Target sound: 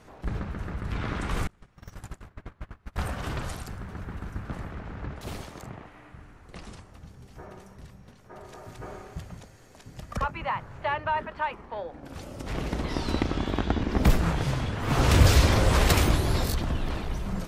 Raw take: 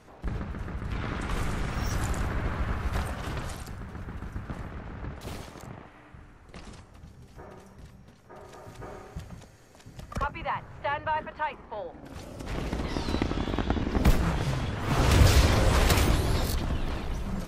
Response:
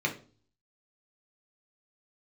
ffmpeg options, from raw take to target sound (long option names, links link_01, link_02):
-filter_complex "[0:a]asettb=1/sr,asplit=3[link_01][link_02][link_03];[link_01]atrim=end=1.474[link_04];[link_02]atrim=start=1.47:end=2.98,asetpts=PTS-STARTPTS,afade=type=in:duration=0.004:curve=qsin,afade=type=out:start_time=1.506:duration=0.004:curve=qsin,agate=range=-33dB:threshold=-25dB:ratio=16:detection=peak[link_05];[link_03]atrim=start=2.976[link_06];[link_04][link_05]acrossfade=duration=0.004:curve1=hsin:curve2=qsin[link_07];[link_07][link_06]acrossfade=duration=0.004:curve1=qsin:curve2=hsin,volume=1.5dB"